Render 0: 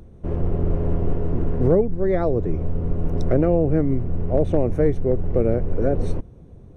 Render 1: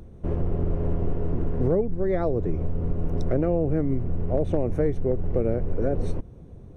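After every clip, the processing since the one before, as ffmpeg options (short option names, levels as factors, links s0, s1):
-af "acompressor=threshold=0.0794:ratio=2"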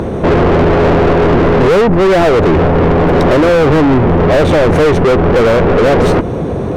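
-filter_complex "[0:a]asplit=2[s0][s1];[s1]highpass=f=720:p=1,volume=100,asoftclip=type=tanh:threshold=0.299[s2];[s0][s2]amix=inputs=2:normalize=0,lowpass=f=1900:p=1,volume=0.501,volume=2.66"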